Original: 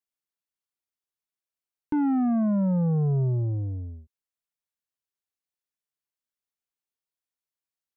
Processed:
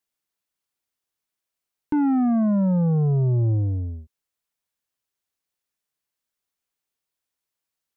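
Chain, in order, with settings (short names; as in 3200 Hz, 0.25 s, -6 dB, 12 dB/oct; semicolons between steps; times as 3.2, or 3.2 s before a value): limiter -25 dBFS, peak gain reduction 3.5 dB; gain +7 dB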